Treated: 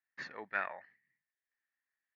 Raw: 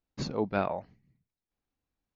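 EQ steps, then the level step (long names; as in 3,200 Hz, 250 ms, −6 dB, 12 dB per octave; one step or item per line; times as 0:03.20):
resonant band-pass 1,800 Hz, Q 16
+18.0 dB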